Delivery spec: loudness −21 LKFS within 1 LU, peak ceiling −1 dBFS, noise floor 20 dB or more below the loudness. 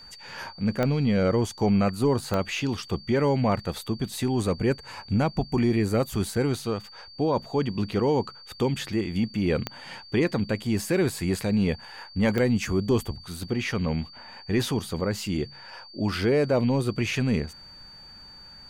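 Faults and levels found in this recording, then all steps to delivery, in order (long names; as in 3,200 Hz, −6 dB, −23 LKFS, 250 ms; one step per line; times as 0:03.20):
number of clicks 4; interfering tone 4,600 Hz; level of the tone −45 dBFS; integrated loudness −26.0 LKFS; sample peak −8.5 dBFS; target loudness −21.0 LKFS
→ click removal
notch filter 4,600 Hz, Q 30
level +5 dB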